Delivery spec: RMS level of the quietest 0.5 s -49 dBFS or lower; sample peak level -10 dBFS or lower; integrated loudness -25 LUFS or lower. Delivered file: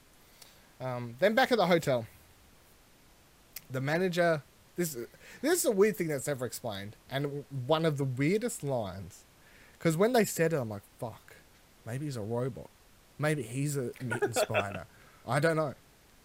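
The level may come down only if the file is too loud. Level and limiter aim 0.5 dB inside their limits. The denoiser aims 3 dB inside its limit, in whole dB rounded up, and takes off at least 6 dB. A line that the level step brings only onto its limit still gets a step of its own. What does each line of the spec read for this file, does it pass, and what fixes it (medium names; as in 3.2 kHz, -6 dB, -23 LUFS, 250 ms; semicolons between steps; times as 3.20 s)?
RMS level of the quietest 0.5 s -60 dBFS: pass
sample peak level -12.5 dBFS: pass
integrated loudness -31.0 LUFS: pass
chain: none needed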